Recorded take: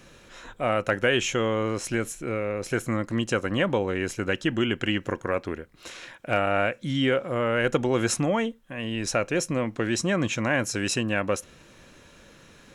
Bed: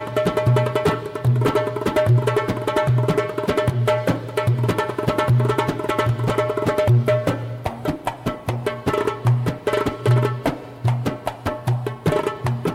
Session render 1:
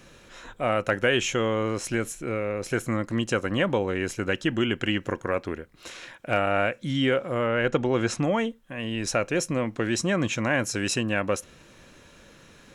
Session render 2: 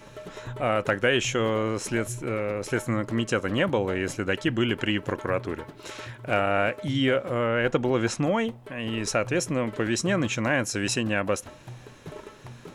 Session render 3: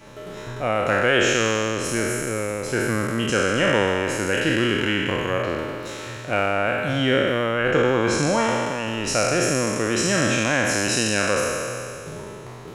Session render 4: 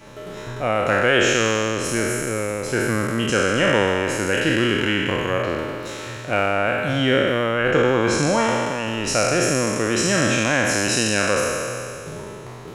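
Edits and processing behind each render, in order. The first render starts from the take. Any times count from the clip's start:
7.46–8.23 s: distance through air 81 m
add bed -21.5 dB
spectral sustain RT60 2.45 s
trim +1.5 dB

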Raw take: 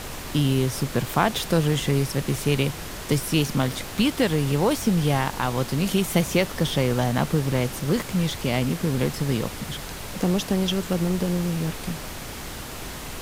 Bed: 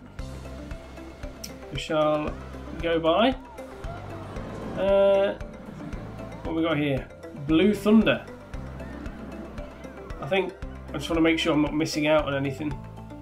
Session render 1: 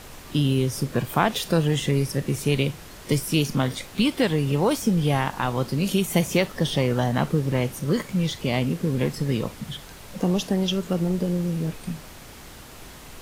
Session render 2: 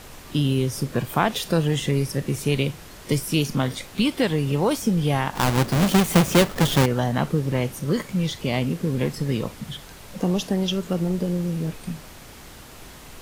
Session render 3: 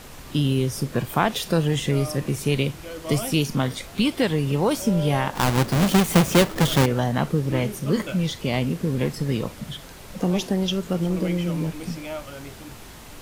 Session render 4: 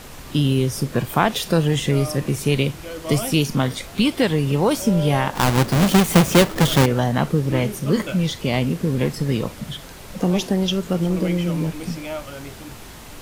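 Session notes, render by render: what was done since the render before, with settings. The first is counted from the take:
noise print and reduce 8 dB
5.35–6.86 s: square wave that keeps the level
add bed -12 dB
trim +3 dB

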